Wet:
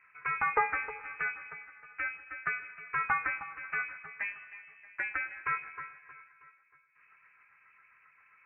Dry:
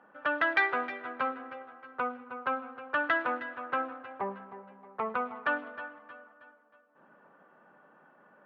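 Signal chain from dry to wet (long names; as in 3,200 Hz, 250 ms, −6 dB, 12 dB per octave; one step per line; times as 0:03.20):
two-band tremolo in antiphase 7.5 Hz, depth 50%, crossover 650 Hz
floating-point word with a short mantissa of 2 bits
voice inversion scrambler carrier 2,800 Hz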